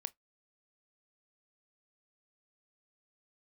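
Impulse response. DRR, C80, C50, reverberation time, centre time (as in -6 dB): 16.0 dB, 43.5 dB, 30.0 dB, 0.15 s, 2 ms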